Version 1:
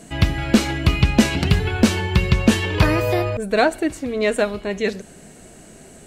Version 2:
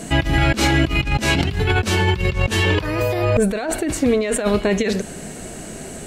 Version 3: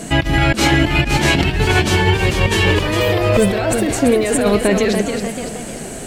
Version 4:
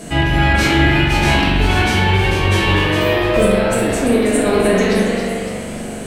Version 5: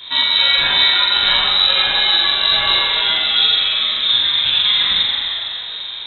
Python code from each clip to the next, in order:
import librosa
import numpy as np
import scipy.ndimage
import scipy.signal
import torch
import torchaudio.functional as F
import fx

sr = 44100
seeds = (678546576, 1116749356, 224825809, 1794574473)

y1 = fx.over_compress(x, sr, threshold_db=-25.0, ratio=-1.0)
y1 = y1 * 10.0 ** (5.5 / 20.0)
y2 = fx.peak_eq(y1, sr, hz=66.0, db=-3.0, octaves=1.1)
y2 = fx.echo_pitch(y2, sr, ms=548, semitones=1, count=3, db_per_echo=-6.0)
y2 = y2 * 10.0 ** (3.0 / 20.0)
y3 = fx.spec_trails(y2, sr, decay_s=0.52)
y3 = fx.peak_eq(y3, sr, hz=7100.0, db=-4.0, octaves=0.22)
y3 = fx.rev_spring(y3, sr, rt60_s=1.5, pass_ms=(42,), chirp_ms=25, drr_db=-2.5)
y3 = y3 * 10.0 ** (-5.0 / 20.0)
y4 = fx.freq_invert(y3, sr, carrier_hz=3900)
y4 = y4 * 10.0 ** (-1.5 / 20.0)